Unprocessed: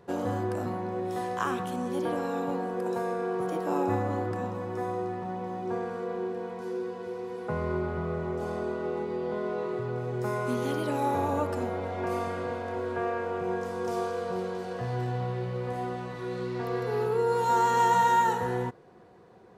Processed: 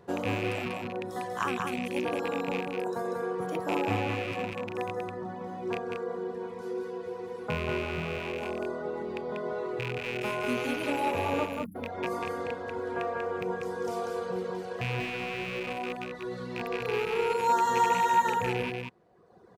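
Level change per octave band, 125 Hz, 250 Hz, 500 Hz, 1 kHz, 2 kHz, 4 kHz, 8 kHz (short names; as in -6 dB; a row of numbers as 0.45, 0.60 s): -4.5, -2.0, -1.5, -1.5, +3.5, +5.5, 0.0 dB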